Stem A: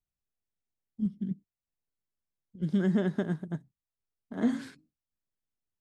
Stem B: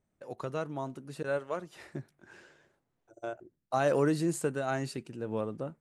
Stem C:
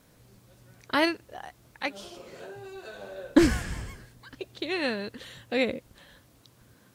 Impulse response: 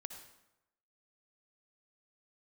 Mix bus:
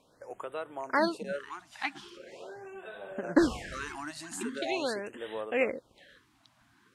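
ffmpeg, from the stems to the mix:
-filter_complex "[0:a]volume=1dB[a];[1:a]bass=f=250:g=-13,treble=f=4k:g=11,volume=1.5dB,asplit=2[b][c];[2:a]volume=-0.5dB[d];[c]apad=whole_len=256175[e];[a][e]sidechaingate=range=-33dB:threshold=-55dB:ratio=16:detection=peak[f];[f][b]amix=inputs=2:normalize=0,acompressor=threshold=-35dB:ratio=1.5,volume=0dB[g];[d][g]amix=inputs=2:normalize=0,lowpass=10k,bass=f=250:g=-13,treble=f=4k:g=-8,afftfilt=real='re*(1-between(b*sr/1024,420*pow(5600/420,0.5+0.5*sin(2*PI*0.42*pts/sr))/1.41,420*pow(5600/420,0.5+0.5*sin(2*PI*0.42*pts/sr))*1.41))':imag='im*(1-between(b*sr/1024,420*pow(5600/420,0.5+0.5*sin(2*PI*0.42*pts/sr))/1.41,420*pow(5600/420,0.5+0.5*sin(2*PI*0.42*pts/sr))*1.41))':win_size=1024:overlap=0.75"

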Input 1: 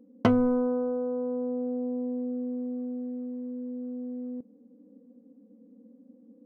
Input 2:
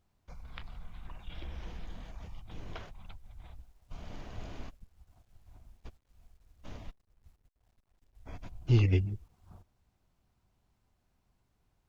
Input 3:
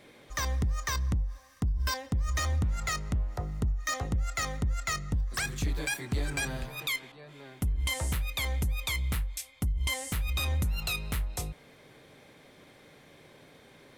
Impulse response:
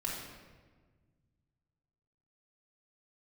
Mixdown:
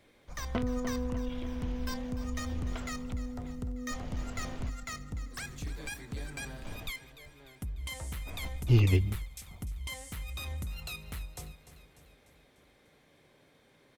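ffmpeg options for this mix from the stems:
-filter_complex "[0:a]adelay=300,volume=-2.5dB,asplit=2[a][b];[b]volume=-17.5dB[c];[1:a]volume=1.5dB,asplit=2[d][e];[2:a]volume=-9dB,asplit=2[f][g];[g]volume=-14dB[h];[e]apad=whole_len=297934[i];[a][i]sidechaincompress=threshold=-49dB:ratio=3:attack=16:release=390[j];[c][h]amix=inputs=2:normalize=0,aecho=0:1:297|594|891|1188|1485|1782|2079|2376:1|0.56|0.314|0.176|0.0983|0.0551|0.0308|0.0173[k];[j][d][f][k]amix=inputs=4:normalize=0"

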